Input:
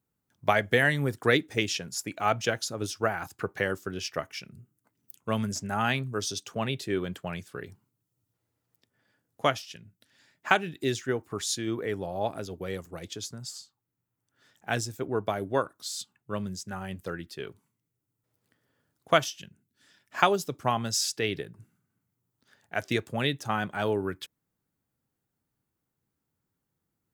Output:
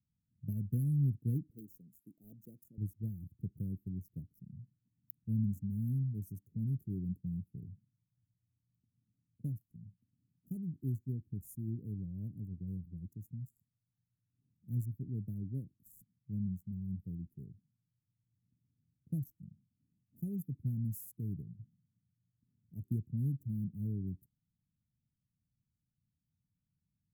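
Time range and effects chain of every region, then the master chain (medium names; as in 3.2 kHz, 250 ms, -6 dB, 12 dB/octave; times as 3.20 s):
1.50–2.78 s: de-esser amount 70% + high-pass 410 Hz
whole clip: local Wiener filter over 15 samples; inverse Chebyshev band-stop 910–3700 Hz, stop band 80 dB; trim +1 dB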